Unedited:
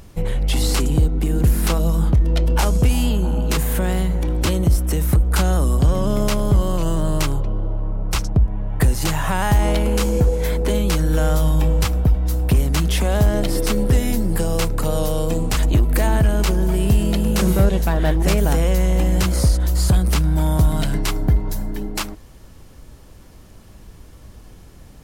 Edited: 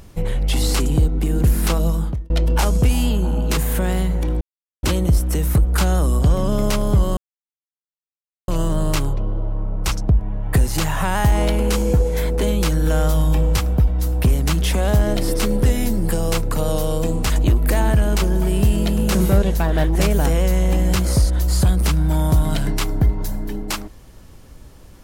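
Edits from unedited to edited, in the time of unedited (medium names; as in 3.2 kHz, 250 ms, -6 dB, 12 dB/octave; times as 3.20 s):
1.87–2.30 s: fade out
4.41 s: insert silence 0.42 s
6.75 s: insert silence 1.31 s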